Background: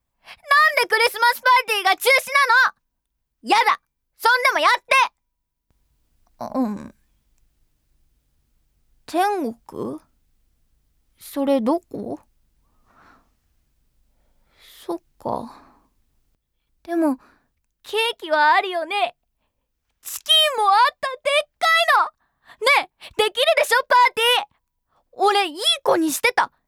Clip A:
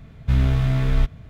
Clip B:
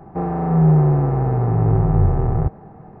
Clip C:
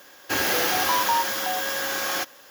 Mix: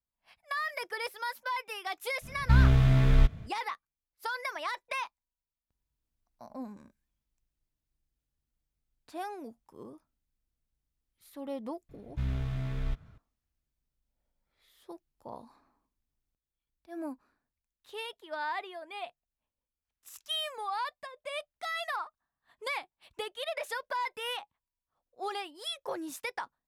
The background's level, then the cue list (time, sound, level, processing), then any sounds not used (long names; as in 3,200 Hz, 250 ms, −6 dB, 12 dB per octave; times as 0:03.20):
background −19 dB
0:02.21: mix in A −2.5 dB, fades 0.05 s
0:11.89: mix in A −14 dB
not used: B, C